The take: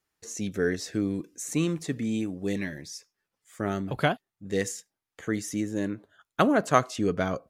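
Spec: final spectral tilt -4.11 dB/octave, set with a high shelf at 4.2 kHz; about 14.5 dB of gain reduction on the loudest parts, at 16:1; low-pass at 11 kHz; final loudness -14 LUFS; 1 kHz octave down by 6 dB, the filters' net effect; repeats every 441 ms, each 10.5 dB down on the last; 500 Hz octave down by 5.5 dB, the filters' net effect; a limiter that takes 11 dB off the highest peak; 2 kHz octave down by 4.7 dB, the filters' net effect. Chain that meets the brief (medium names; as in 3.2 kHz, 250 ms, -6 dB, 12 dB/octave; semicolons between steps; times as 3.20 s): low-pass 11 kHz; peaking EQ 500 Hz -5.5 dB; peaking EQ 1 kHz -5.5 dB; peaking EQ 2 kHz -4.5 dB; treble shelf 4.2 kHz +4.5 dB; compression 16:1, threshold -35 dBFS; peak limiter -32 dBFS; feedback delay 441 ms, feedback 30%, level -10.5 dB; trim +28.5 dB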